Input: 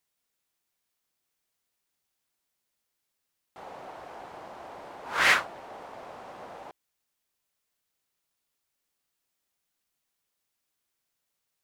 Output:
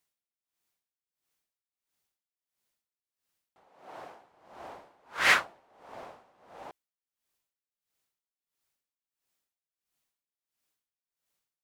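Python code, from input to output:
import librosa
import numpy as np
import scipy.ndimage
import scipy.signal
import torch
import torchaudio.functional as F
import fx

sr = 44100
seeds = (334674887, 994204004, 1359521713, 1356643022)

y = fx.highpass(x, sr, hz=fx.line((3.68, 180.0), (4.26, 75.0)), slope=12, at=(3.68, 4.26), fade=0.02)
y = y * 10.0 ** (-21 * (0.5 - 0.5 * np.cos(2.0 * np.pi * 1.5 * np.arange(len(y)) / sr)) / 20.0)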